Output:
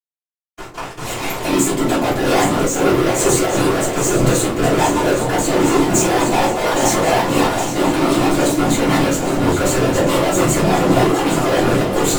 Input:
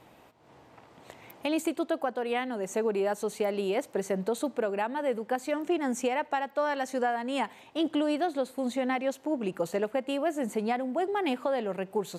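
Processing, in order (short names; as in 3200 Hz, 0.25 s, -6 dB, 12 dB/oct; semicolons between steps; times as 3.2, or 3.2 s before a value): gate with hold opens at -45 dBFS; bell 7000 Hz +9.5 dB 0.53 oct; in parallel at +0.5 dB: compressor, threshold -42 dBFS, peak gain reduction 17 dB; on the sum: fuzz box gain 45 dB, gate -46 dBFS; whisperiser; on a send: echo with dull and thin repeats by turns 0.408 s, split 920 Hz, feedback 80%, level -6 dB; on the sum: shoebox room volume 150 m³, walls furnished, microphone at 3.2 m; noise-modulated level, depth 55%; gain -6.5 dB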